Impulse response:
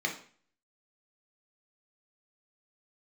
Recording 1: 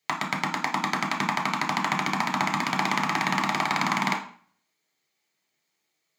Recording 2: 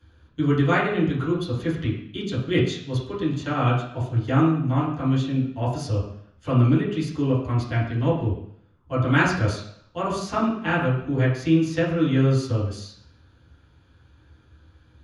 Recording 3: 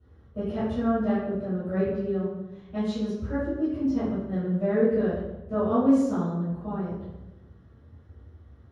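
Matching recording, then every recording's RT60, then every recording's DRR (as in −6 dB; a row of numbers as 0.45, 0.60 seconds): 1; 0.45, 0.65, 1.0 seconds; 0.5, −10.0, −15.5 decibels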